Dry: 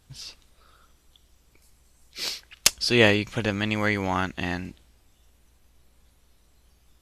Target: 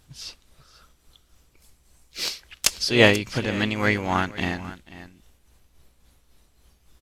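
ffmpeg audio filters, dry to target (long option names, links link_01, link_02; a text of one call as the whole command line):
ffmpeg -i in.wav -filter_complex "[0:a]aecho=1:1:489:0.158,tremolo=f=3.6:d=0.46,asplit=2[link_01][link_02];[link_02]asetrate=52444,aresample=44100,atempo=0.840896,volume=-11dB[link_03];[link_01][link_03]amix=inputs=2:normalize=0,volume=3dB" out.wav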